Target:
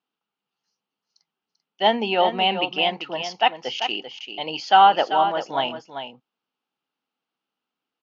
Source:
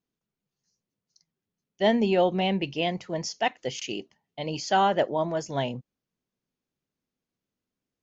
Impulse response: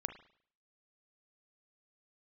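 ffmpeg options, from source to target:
-filter_complex "[0:a]highpass=330,equalizer=f=380:t=q:w=4:g=-4,equalizer=f=580:t=q:w=4:g=-5,equalizer=f=830:t=q:w=4:g=9,equalizer=f=1.3k:t=q:w=4:g=8,equalizer=f=1.9k:t=q:w=4:g=-3,equalizer=f=2.9k:t=q:w=4:g=8,lowpass=f=4.8k:w=0.5412,lowpass=f=4.8k:w=1.3066,asplit=2[a][b];[b]aecho=0:1:391:0.355[c];[a][c]amix=inputs=2:normalize=0,volume=3.5dB"

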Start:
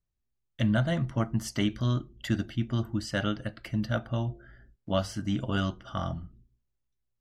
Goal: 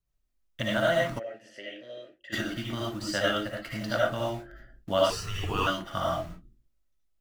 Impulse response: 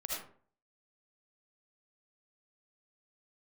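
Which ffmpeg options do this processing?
-filter_complex "[0:a]asplit=2[a][b];[b]acrusher=bits=6:mix=0:aa=0.000001,volume=-9dB[c];[a][c]amix=inputs=2:normalize=0[d];[1:a]atrim=start_sample=2205,afade=t=out:st=0.19:d=0.01,atrim=end_sample=8820[e];[d][e]afir=irnorm=-1:irlink=0,acrossover=split=360[f][g];[f]acompressor=threshold=-39dB:ratio=6[h];[h][g]amix=inputs=2:normalize=0,asplit=3[i][j][k];[i]afade=t=out:st=1.18:d=0.02[l];[j]asplit=3[m][n][o];[m]bandpass=f=530:t=q:w=8,volume=0dB[p];[n]bandpass=f=1.84k:t=q:w=8,volume=-6dB[q];[o]bandpass=f=2.48k:t=q:w=8,volume=-9dB[r];[p][q][r]amix=inputs=3:normalize=0,afade=t=in:st=1.18:d=0.02,afade=t=out:st=2.32:d=0.02[s];[k]afade=t=in:st=2.32:d=0.02[t];[l][s][t]amix=inputs=3:normalize=0,asettb=1/sr,asplit=3[u][v][w];[u]atrim=end=2.894[x];[v]atrim=start=2.89:end=3.76,asetpts=PTS-STARTPTS,afade=t=in:d=0.004:c=qsin,afade=t=out:st=0.866:d=0.004:c=qsin,aeval=exprs='0.15*(cos(1*acos(clip(val(0)/0.15,-1,1)))-cos(1*PI/2))+0.00944*(cos(3*acos(clip(val(0)/0.15,-1,1)))-cos(3*PI/2))':c=same[y];[w]atrim=start=3.756[z];[x][y]acrossfade=d=0.004:c1=hsin:c2=qsin[aa];[aa][z]acrossfade=d=0.004:c1=qsin:c2=hsin,asettb=1/sr,asplit=3[ab][ac][ad];[ab]atrim=end=5.104[ae];[ac]atrim=start=5.1:end=5.67,asetpts=PTS-STARTPTS,afade=t=in:d=0.004:c=qsin,afade=t=out:st=0.566:d=0.004:c=qsin,afreqshift=-210[af];[ad]atrim=start=5.666[ag];[ae][af]acrossfade=d=0.004:c1=hsin:c2=qsin[ah];[ah][ag]acrossfade=d=0.004:c1=qsin:c2=hsin,volume=3dB"

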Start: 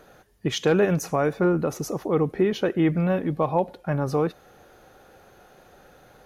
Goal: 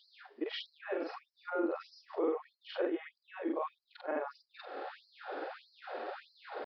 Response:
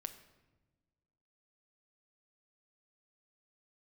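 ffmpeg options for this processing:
-af "afftfilt=real='re':imag='-im':win_size=4096:overlap=0.75,highshelf=f=2.5k:g=-10,areverse,acompressor=threshold=-39dB:ratio=8,areverse,alimiter=level_in=16dB:limit=-24dB:level=0:latency=1:release=259,volume=-16dB,atempo=0.94,aresample=11025,aresample=44100,afftfilt=real='re*gte(b*sr/1024,240*pow(4100/240,0.5+0.5*sin(2*PI*1.6*pts/sr)))':imag='im*gte(b*sr/1024,240*pow(4100/240,0.5+0.5*sin(2*PI*1.6*pts/sr)))':win_size=1024:overlap=0.75,volume=18dB"

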